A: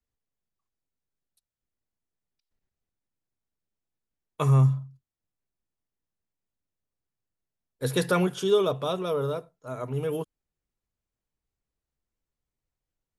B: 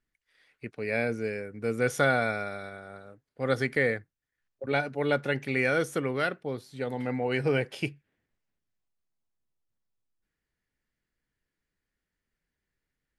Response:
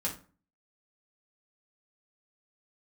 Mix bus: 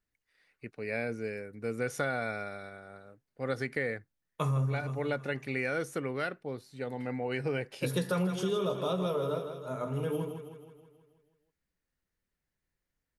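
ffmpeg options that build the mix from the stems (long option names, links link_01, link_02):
-filter_complex "[0:a]bandreject=frequency=7400:width=13,volume=-6.5dB,asplit=3[link_01][link_02][link_03];[link_02]volume=-4.5dB[link_04];[link_03]volume=-5.5dB[link_05];[1:a]bandreject=frequency=3300:width=11,volume=-4.5dB[link_06];[2:a]atrim=start_sample=2205[link_07];[link_04][link_07]afir=irnorm=-1:irlink=0[link_08];[link_05]aecho=0:1:160|320|480|640|800|960|1120|1280:1|0.55|0.303|0.166|0.0915|0.0503|0.0277|0.0152[link_09];[link_01][link_06][link_08][link_09]amix=inputs=4:normalize=0,acompressor=threshold=-27dB:ratio=6"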